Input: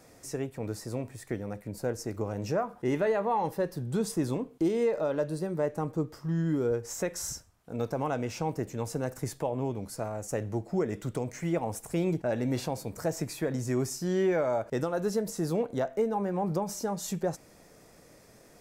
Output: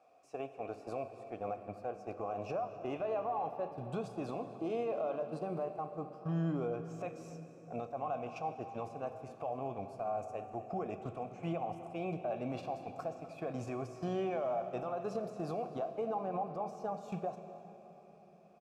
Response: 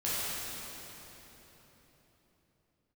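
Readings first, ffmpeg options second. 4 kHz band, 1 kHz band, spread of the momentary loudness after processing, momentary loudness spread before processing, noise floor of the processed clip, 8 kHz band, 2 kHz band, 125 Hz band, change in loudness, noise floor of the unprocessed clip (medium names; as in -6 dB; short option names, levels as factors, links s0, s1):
-14.0 dB, -3.0 dB, 8 LU, 8 LU, -57 dBFS, under -20 dB, -11.0 dB, -10.0 dB, -8.0 dB, -56 dBFS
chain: -filter_complex "[0:a]asplit=3[s0][s1][s2];[s0]bandpass=f=730:t=q:w=8,volume=1[s3];[s1]bandpass=f=1090:t=q:w=8,volume=0.501[s4];[s2]bandpass=f=2440:t=q:w=8,volume=0.355[s5];[s3][s4][s5]amix=inputs=3:normalize=0,asubboost=boost=2.5:cutoff=240,acompressor=threshold=0.00355:ratio=3,alimiter=level_in=13.3:limit=0.0631:level=0:latency=1:release=90,volume=0.075,agate=range=0.158:threshold=0.00141:ratio=16:detection=peak,asplit=2[s6][s7];[s7]adelay=250.7,volume=0.158,highshelf=f=4000:g=-5.64[s8];[s6][s8]amix=inputs=2:normalize=0,asplit=2[s9][s10];[1:a]atrim=start_sample=2205[s11];[s10][s11]afir=irnorm=-1:irlink=0,volume=0.158[s12];[s9][s12]amix=inputs=2:normalize=0,volume=6.68"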